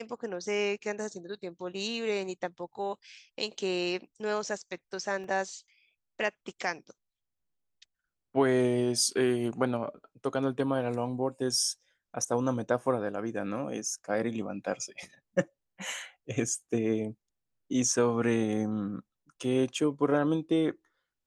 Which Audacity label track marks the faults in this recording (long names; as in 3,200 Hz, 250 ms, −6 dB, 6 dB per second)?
5.240000	5.240000	drop-out 2.5 ms